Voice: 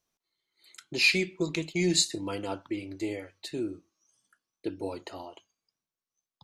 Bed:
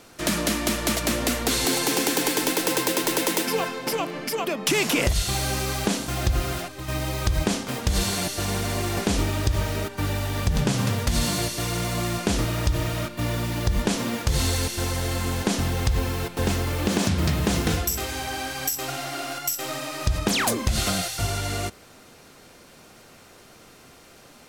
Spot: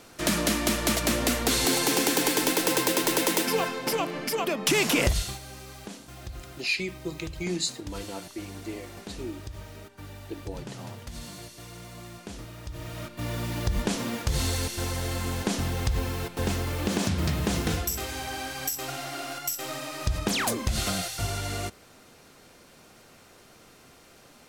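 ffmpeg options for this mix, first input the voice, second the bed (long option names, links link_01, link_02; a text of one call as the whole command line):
ffmpeg -i stem1.wav -i stem2.wav -filter_complex "[0:a]adelay=5650,volume=-4.5dB[link_01];[1:a]volume=12dB,afade=type=out:start_time=5.07:duration=0.32:silence=0.158489,afade=type=in:start_time=12.66:duration=0.84:silence=0.223872[link_02];[link_01][link_02]amix=inputs=2:normalize=0" out.wav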